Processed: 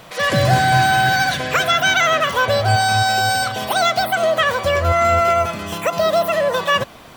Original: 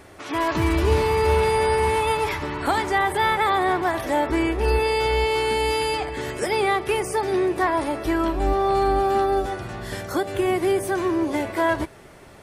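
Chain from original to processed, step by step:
wrong playback speed 45 rpm record played at 78 rpm
level +5 dB

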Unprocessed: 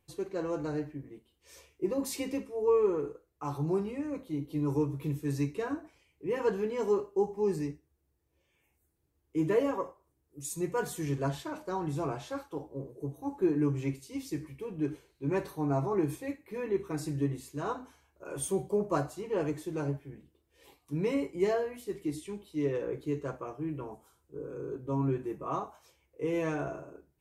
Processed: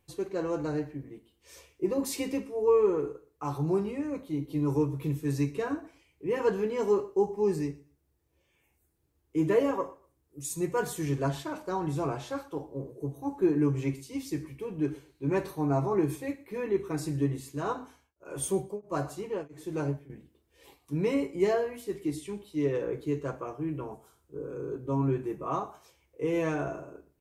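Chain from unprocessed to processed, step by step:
repeating echo 119 ms, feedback 22%, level −22 dB
0:17.82–0:20.10: tremolo along a rectified sine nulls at 1.5 Hz
level +2.5 dB

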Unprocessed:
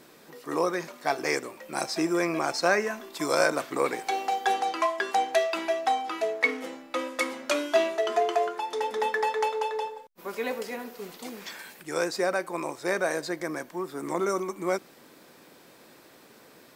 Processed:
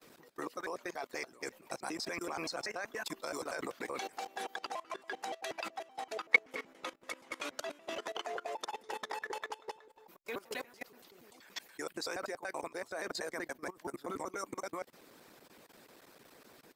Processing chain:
slices reordered back to front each 95 ms, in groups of 2
harmonic and percussive parts rebalanced harmonic −15 dB
output level in coarse steps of 20 dB
level +1 dB

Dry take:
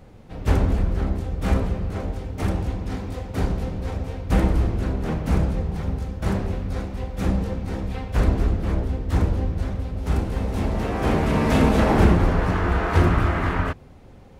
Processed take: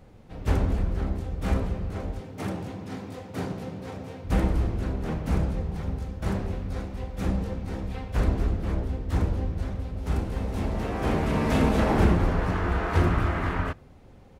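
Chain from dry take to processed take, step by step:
0:02.20–0:04.24: high-pass filter 110 Hz 24 dB per octave
far-end echo of a speakerphone 80 ms, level −29 dB
level −4.5 dB

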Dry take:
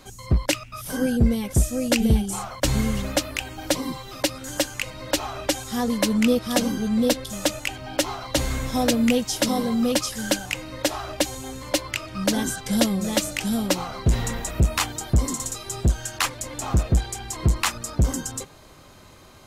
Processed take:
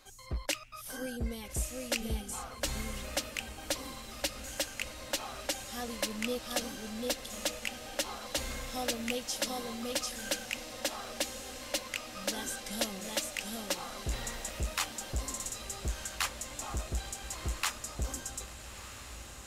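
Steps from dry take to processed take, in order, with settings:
parametric band 150 Hz −12.5 dB 2.9 octaves
notch filter 980 Hz, Q 19
feedback delay with all-pass diffusion 1,308 ms, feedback 73%, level −12 dB
level −8.5 dB

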